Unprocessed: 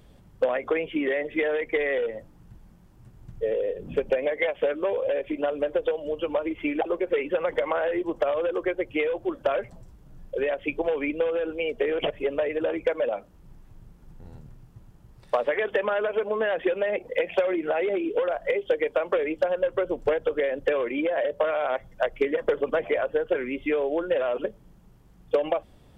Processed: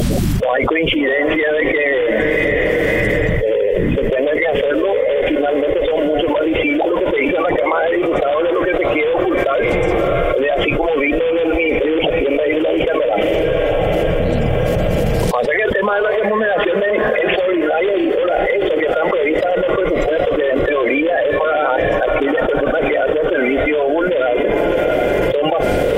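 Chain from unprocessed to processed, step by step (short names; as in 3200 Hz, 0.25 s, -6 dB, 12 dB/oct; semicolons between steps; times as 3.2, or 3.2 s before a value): bin magnitudes rounded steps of 30 dB; diffused feedback echo 0.679 s, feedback 49%, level -13 dB; fast leveller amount 100%; gain +3 dB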